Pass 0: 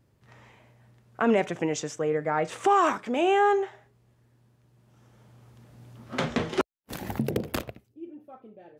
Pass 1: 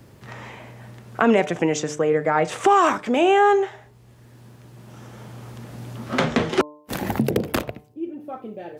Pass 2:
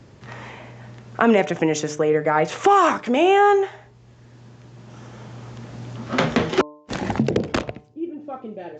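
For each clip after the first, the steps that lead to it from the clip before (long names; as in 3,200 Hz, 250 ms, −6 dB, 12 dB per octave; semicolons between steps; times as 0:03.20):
hum removal 149.5 Hz, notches 7; multiband upward and downward compressor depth 40%; level +7 dB
downsampling to 16,000 Hz; level +1 dB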